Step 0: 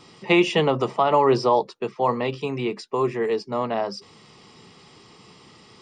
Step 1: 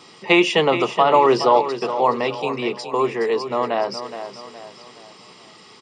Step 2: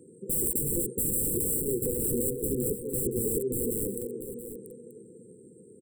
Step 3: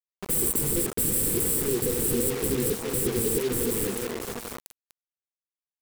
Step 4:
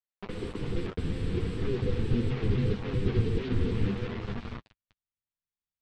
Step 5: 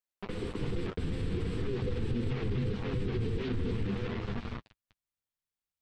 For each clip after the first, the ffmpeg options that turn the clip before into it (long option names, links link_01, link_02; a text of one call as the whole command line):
ffmpeg -i in.wav -filter_complex "[0:a]highpass=frequency=370:poles=1,asplit=2[link_01][link_02];[link_02]aecho=0:1:419|838|1257|1676:0.299|0.125|0.0527|0.0221[link_03];[link_01][link_03]amix=inputs=2:normalize=0,volume=5dB" out.wav
ffmpeg -i in.wav -af "aeval=exprs='(mod(8.91*val(0)+1,2)-1)/8.91':channel_layout=same,afftfilt=real='re*(1-between(b*sr/4096,520,7500))':imag='im*(1-between(b*sr/4096,520,7500))':win_size=4096:overlap=0.75,aecho=1:1:685:0.224" out.wav
ffmpeg -i in.wav -af "acrusher=bits=5:mix=0:aa=0.000001,volume=3dB" out.wav
ffmpeg -i in.wav -af "lowpass=frequency=3800:width=0.5412,lowpass=frequency=3800:width=1.3066,asubboost=boost=6.5:cutoff=170,flanger=delay=8.9:depth=2.4:regen=-21:speed=0.43:shape=triangular" out.wav
ffmpeg -i in.wav -af "alimiter=level_in=0.5dB:limit=-24dB:level=0:latency=1:release=37,volume=-0.5dB" out.wav